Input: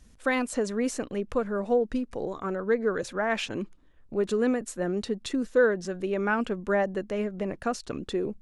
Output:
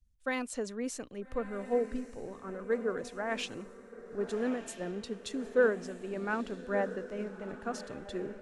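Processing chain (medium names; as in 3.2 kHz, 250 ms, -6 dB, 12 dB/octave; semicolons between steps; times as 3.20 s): echo that smears into a reverb 1283 ms, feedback 52%, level -9 dB; three bands expanded up and down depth 70%; trim -8 dB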